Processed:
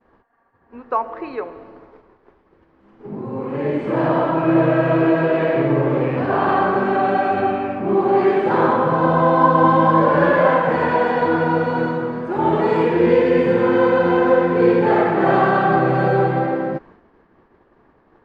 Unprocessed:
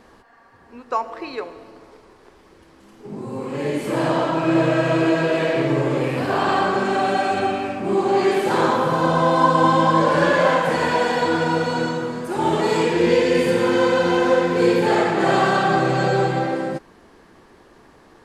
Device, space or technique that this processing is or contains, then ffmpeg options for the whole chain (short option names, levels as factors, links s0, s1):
hearing-loss simulation: -af "lowpass=1800,agate=range=0.0224:threshold=0.00708:ratio=3:detection=peak,volume=1.33"